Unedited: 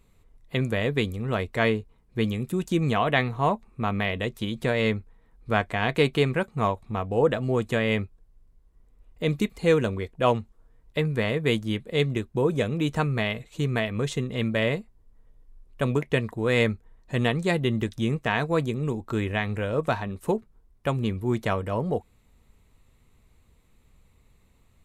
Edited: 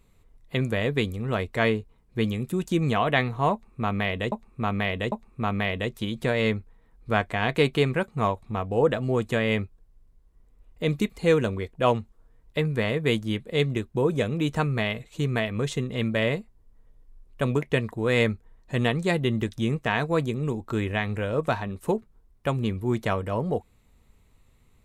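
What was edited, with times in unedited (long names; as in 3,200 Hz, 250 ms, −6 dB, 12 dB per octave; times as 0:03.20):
0:03.52–0:04.32: repeat, 3 plays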